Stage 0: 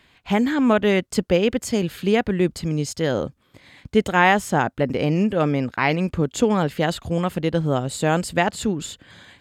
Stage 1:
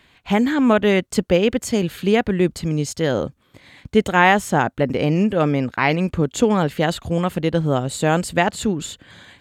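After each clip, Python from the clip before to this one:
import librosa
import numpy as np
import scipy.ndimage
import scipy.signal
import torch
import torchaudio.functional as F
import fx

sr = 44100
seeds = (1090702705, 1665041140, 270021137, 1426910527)

y = fx.notch(x, sr, hz=5000.0, q=17.0)
y = y * 10.0 ** (2.0 / 20.0)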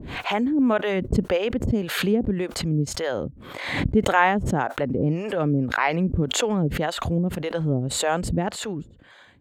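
y = fx.high_shelf(x, sr, hz=2300.0, db=-10.5)
y = fx.harmonic_tremolo(y, sr, hz=1.8, depth_pct=100, crossover_hz=470.0)
y = fx.pre_swell(y, sr, db_per_s=51.0)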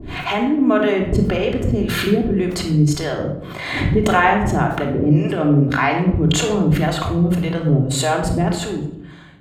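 y = fx.room_shoebox(x, sr, seeds[0], volume_m3=2100.0, walls='furnished', distance_m=3.2)
y = y * 10.0 ** (1.5 / 20.0)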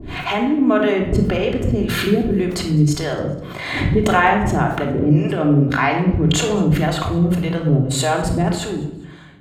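y = fx.echo_feedback(x, sr, ms=205, feedback_pct=43, wet_db=-23.0)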